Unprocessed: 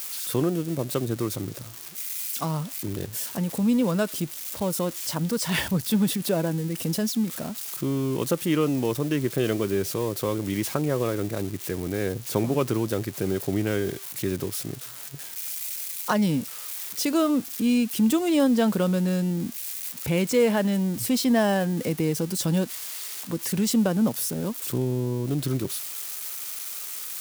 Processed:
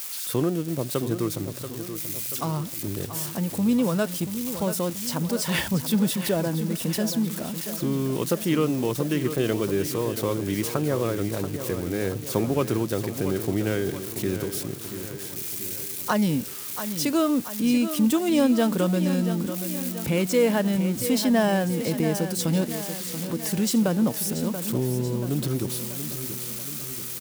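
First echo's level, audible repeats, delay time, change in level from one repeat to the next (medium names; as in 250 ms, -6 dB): -10.0 dB, 5, 683 ms, -5.0 dB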